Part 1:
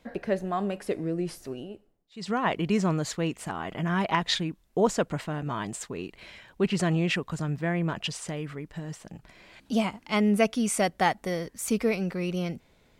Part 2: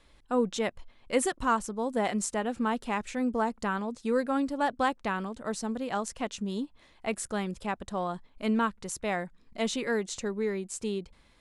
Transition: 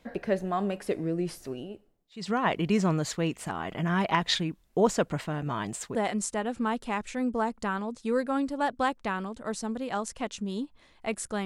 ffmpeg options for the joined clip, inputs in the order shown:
ffmpeg -i cue0.wav -i cue1.wav -filter_complex "[0:a]apad=whole_dur=11.45,atrim=end=11.45,atrim=end=5.952[link_01];[1:a]atrim=start=1.948:end=7.45[link_02];[link_01][link_02]acrossfade=duration=0.004:curve1=hsin:curve2=hsin" out.wav

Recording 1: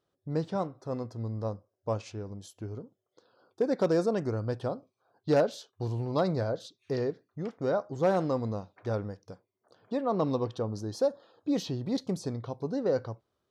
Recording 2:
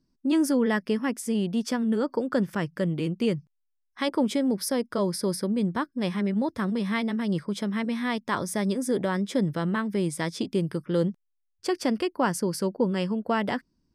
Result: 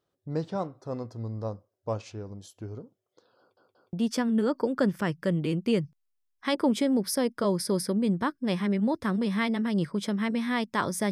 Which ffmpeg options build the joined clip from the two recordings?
ffmpeg -i cue0.wav -i cue1.wav -filter_complex "[0:a]apad=whole_dur=11.11,atrim=end=11.11,asplit=3[link_01][link_02][link_03];[link_01]atrim=end=3.572[link_04];[link_02]atrim=start=3.388:end=3.572[link_05];[link_03]atrim=start=3.388:end=3.572[link_06];[1:a]atrim=start=1.468:end=8.65[link_07];[link_04][link_05]acrossfade=duration=0.004:curve1=hsin:curve2=hsin[link_08];[link_08][link_06]acrossfade=duration=0.004:curve1=hsin:curve2=hsin[link_09];[link_09][link_07]acrossfade=duration=0.004:curve1=hsin:curve2=hsin" out.wav

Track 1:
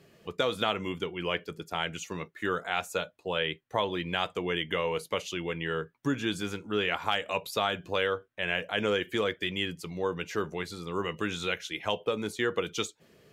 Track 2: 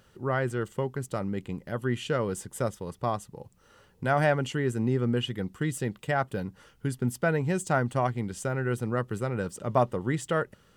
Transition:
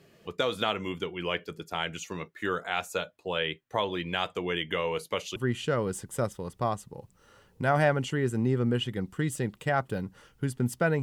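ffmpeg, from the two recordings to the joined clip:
ffmpeg -i cue0.wav -i cue1.wav -filter_complex "[0:a]apad=whole_dur=11.02,atrim=end=11.02,atrim=end=5.362[link_01];[1:a]atrim=start=1.778:end=7.44[link_02];[link_01][link_02]acrossfade=duration=0.004:curve1=hsin:curve2=hsin" out.wav

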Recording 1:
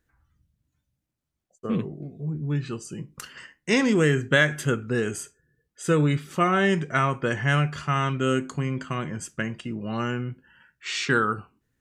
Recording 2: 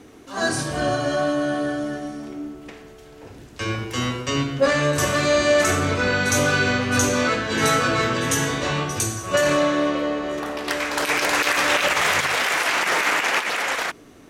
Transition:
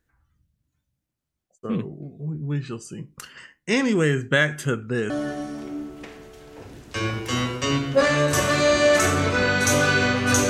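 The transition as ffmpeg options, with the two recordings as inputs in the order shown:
ffmpeg -i cue0.wav -i cue1.wav -filter_complex "[0:a]apad=whole_dur=10.49,atrim=end=10.49,atrim=end=5.102[link_01];[1:a]atrim=start=1.748:end=7.14[link_02];[link_01][link_02]acrossfade=duration=0.004:curve1=hsin:curve2=hsin" out.wav

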